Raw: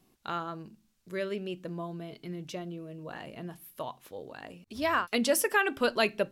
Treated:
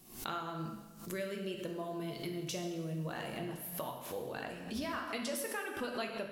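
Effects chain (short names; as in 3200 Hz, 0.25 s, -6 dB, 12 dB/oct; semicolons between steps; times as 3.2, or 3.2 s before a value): high shelf 6000 Hz +12 dB, from 3.38 s +3 dB; compressor 8:1, threshold -41 dBFS, peak gain reduction 20 dB; plate-style reverb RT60 1.3 s, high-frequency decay 0.85×, DRR 2 dB; backwards sustainer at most 97 dB/s; gain +3 dB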